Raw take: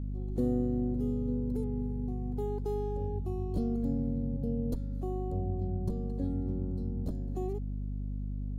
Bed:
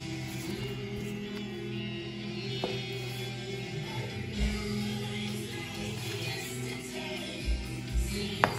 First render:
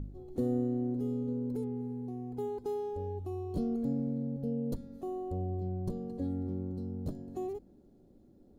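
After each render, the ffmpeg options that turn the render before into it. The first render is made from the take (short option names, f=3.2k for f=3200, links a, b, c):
-af "bandreject=f=50:t=h:w=4,bandreject=f=100:t=h:w=4,bandreject=f=150:t=h:w=4,bandreject=f=200:t=h:w=4,bandreject=f=250:t=h:w=4"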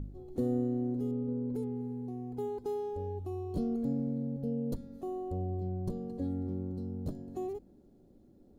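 -filter_complex "[0:a]asettb=1/sr,asplit=3[a][b][c];[a]atrim=end=1.114[d];[b]atrim=start=1.11:end=1.54,asetpts=PTS-STARTPTS,afade=t=in:d=0.004:c=qsin,afade=t=out:st=0.426:d=0.004:c=qsin,lowpass=2.1k[e];[c]atrim=start=1.536[f];[d][e]acrossfade=d=0.004:c1=hsin:c2=qsin[g];[g][f]acrossfade=d=0.004:c1=qsin:c2=hsin"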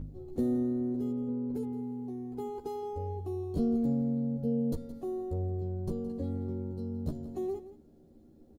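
-filter_complex "[0:a]asplit=2[a][b];[b]adelay=13,volume=-2.5dB[c];[a][c]amix=inputs=2:normalize=0,aecho=1:1:169:0.178"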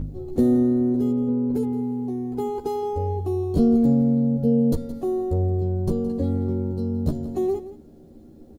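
-af "volume=11dB"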